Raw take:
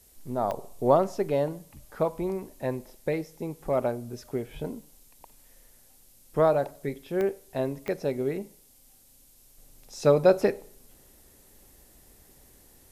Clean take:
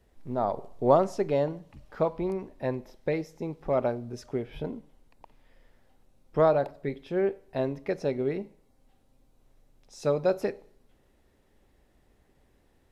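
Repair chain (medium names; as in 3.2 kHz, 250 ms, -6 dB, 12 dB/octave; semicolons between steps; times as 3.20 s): de-click; noise print and reduce 8 dB; trim 0 dB, from 9.58 s -6 dB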